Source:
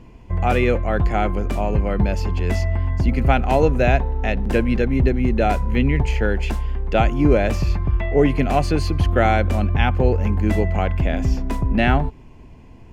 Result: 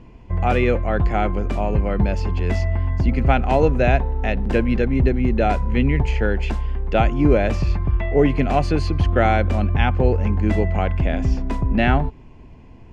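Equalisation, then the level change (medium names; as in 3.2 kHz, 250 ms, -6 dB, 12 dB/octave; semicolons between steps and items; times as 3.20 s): distance through air 69 m; 0.0 dB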